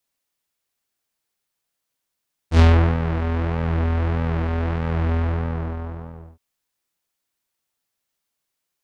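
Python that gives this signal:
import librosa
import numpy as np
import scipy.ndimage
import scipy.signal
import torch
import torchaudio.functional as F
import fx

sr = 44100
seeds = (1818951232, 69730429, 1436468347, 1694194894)

y = fx.sub_patch_pwm(sr, seeds[0], note=40, wave2='saw', interval_st=0, detune_cents=16, level2_db=-9.0, sub_db=-15.0, noise_db=-30.0, kind='lowpass', cutoff_hz=870.0, q=0.9, env_oct=3.0, env_decay_s=0.27, env_sustain_pct=40, attack_ms=82.0, decay_s=0.38, sustain_db=-10, release_s=1.22, note_s=2.65, lfo_hz=1.6, width_pct=37, width_swing_pct=14)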